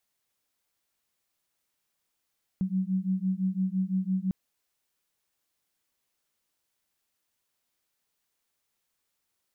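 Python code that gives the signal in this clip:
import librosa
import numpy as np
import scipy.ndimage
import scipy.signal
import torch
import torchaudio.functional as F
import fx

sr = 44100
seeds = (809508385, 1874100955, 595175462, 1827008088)

y = fx.two_tone_beats(sr, length_s=1.7, hz=185.0, beat_hz=5.9, level_db=-28.5)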